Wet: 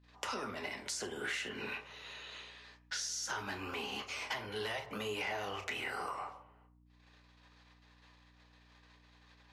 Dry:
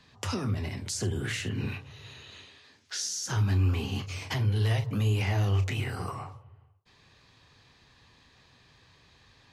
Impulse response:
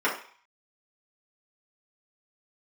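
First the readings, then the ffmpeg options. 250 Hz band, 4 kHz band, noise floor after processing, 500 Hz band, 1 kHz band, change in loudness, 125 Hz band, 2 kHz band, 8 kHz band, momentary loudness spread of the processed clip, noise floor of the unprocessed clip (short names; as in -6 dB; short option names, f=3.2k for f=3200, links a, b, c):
-12.5 dB, -3.5 dB, -65 dBFS, -4.0 dB, -1.0 dB, -9.5 dB, -27.5 dB, -1.0 dB, -6.0 dB, 10 LU, -61 dBFS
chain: -filter_complex "[0:a]agate=range=-26dB:threshold=-58dB:ratio=16:detection=peak,highpass=500,highshelf=f=4.2k:g=-6.5,acompressor=threshold=-39dB:ratio=3,aeval=exprs='val(0)+0.000562*(sin(2*PI*60*n/s)+sin(2*PI*2*60*n/s)/2+sin(2*PI*3*60*n/s)/3+sin(2*PI*4*60*n/s)/4+sin(2*PI*5*60*n/s)/5)':c=same,asoftclip=type=tanh:threshold=-22.5dB,asplit=2[a][b];[1:a]atrim=start_sample=2205[c];[b][c]afir=irnorm=-1:irlink=0,volume=-19.5dB[d];[a][d]amix=inputs=2:normalize=0,volume=1.5dB"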